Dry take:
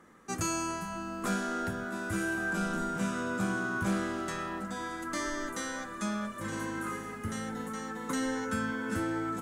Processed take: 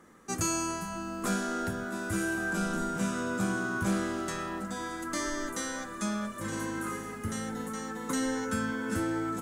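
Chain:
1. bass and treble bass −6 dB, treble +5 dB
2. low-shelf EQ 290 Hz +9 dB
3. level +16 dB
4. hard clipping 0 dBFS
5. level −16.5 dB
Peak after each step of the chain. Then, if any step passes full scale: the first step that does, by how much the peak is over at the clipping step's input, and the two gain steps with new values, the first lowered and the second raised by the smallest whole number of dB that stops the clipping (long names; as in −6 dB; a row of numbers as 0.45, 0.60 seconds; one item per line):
−19.0, −19.0, −3.0, −3.0, −19.5 dBFS
no step passes full scale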